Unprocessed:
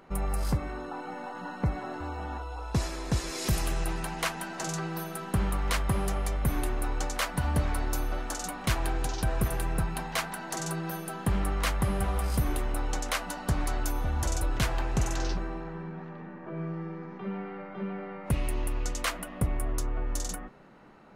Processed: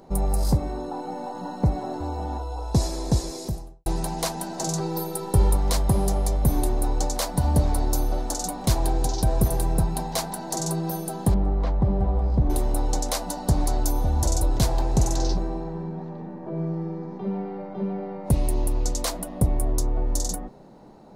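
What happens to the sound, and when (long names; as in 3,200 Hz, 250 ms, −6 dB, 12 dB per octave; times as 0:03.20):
0:03.03–0:03.86: fade out and dull
0:04.80–0:05.56: comb filter 2.2 ms
0:11.34–0:12.50: head-to-tape spacing loss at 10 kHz 42 dB
whole clip: flat-topped bell 1,900 Hz −13.5 dB; level +7 dB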